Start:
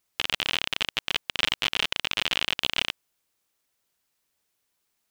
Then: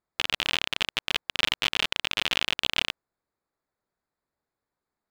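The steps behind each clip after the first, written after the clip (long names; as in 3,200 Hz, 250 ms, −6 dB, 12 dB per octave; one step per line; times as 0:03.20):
adaptive Wiener filter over 15 samples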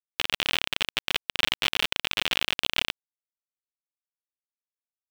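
bit reduction 5 bits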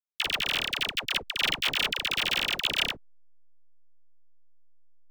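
all-pass dispersion lows, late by 68 ms, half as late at 780 Hz
slack as between gear wheels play −44.5 dBFS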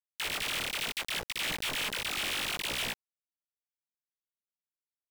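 chorus effect 0.69 Hz, delay 16 ms, depth 6.1 ms
log-companded quantiser 2 bits
pitch vibrato 2.6 Hz 41 cents
level −6.5 dB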